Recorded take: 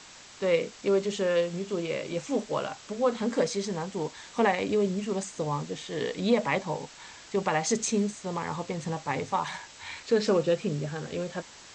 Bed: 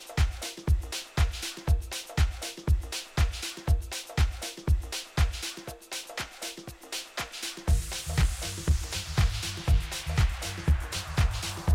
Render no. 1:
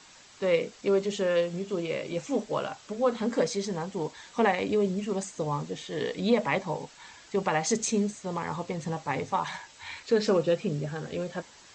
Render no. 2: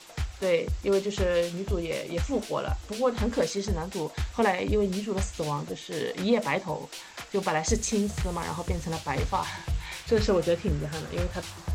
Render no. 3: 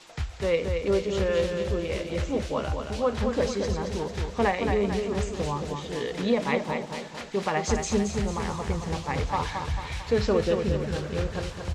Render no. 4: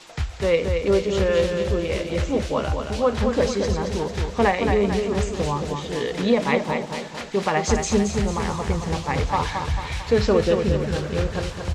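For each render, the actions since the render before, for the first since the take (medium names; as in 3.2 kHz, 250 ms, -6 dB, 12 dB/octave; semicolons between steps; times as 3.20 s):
noise reduction 6 dB, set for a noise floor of -49 dBFS
add bed -6.5 dB
distance through air 52 m; feedback delay 223 ms, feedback 52%, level -6 dB
trim +5 dB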